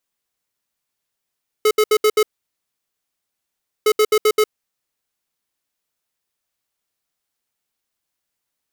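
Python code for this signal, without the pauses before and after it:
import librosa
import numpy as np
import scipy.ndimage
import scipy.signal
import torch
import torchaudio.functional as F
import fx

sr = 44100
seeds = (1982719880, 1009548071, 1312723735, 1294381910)

y = fx.beep_pattern(sr, wave='square', hz=428.0, on_s=0.06, off_s=0.07, beeps=5, pause_s=1.63, groups=2, level_db=-13.5)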